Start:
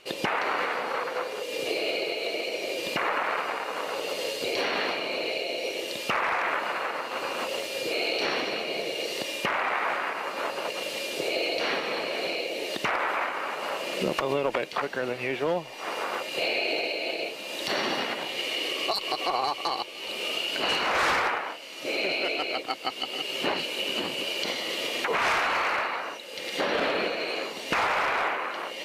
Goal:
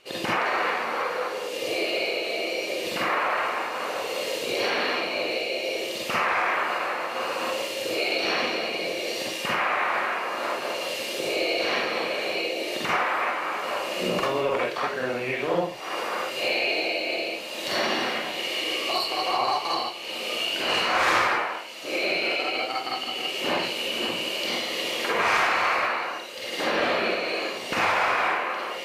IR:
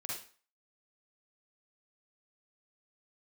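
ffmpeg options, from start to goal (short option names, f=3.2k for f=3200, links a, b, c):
-filter_complex "[1:a]atrim=start_sample=2205[a];[0:a][a]afir=irnorm=-1:irlink=0,volume=2.5dB"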